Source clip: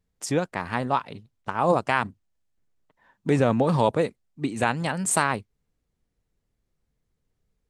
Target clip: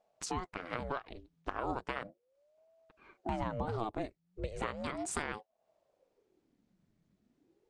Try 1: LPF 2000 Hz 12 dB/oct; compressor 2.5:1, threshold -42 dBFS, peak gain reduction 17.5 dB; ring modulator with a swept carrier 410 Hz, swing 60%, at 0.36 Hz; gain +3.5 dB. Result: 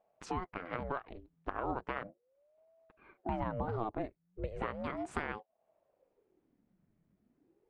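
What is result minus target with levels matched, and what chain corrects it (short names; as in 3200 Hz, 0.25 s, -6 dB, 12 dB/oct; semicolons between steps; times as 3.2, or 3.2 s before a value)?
8000 Hz band -15.5 dB
LPF 6300 Hz 12 dB/oct; compressor 2.5:1, threshold -42 dBFS, peak gain reduction 17.5 dB; ring modulator with a swept carrier 410 Hz, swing 60%, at 0.36 Hz; gain +3.5 dB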